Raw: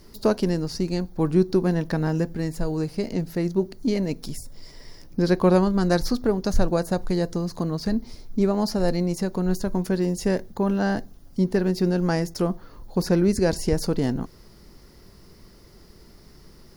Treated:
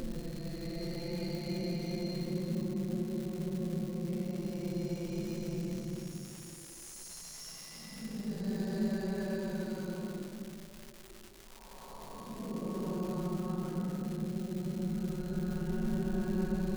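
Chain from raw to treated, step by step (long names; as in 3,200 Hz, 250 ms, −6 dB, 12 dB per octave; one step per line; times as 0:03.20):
extreme stretch with random phases 28×, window 0.05 s, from 0:08.92
tuned comb filter 220 Hz, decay 0.58 s, harmonics odd, mix 80%
surface crackle 480 per second −40 dBFS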